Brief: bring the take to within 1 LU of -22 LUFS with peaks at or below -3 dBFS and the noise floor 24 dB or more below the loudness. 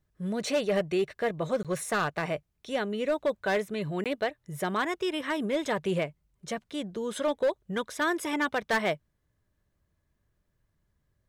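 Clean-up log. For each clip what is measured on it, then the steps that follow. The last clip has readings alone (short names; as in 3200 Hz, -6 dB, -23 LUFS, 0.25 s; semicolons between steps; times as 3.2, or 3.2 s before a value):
clipped 0.8%; flat tops at -20.5 dBFS; dropouts 2; longest dropout 17 ms; loudness -30.5 LUFS; peak -20.5 dBFS; loudness target -22.0 LUFS
-> clip repair -20.5 dBFS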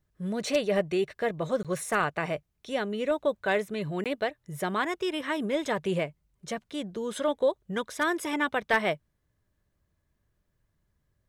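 clipped 0.0%; dropouts 2; longest dropout 17 ms
-> interpolate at 1.63/4.04, 17 ms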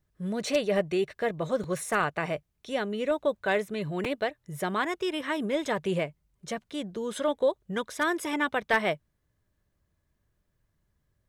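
dropouts 0; loudness -30.0 LUFS; peak -11.5 dBFS; loudness target -22.0 LUFS
-> gain +8 dB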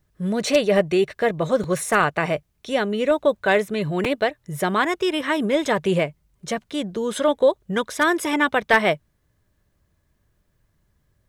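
loudness -22.0 LUFS; peak -3.5 dBFS; noise floor -68 dBFS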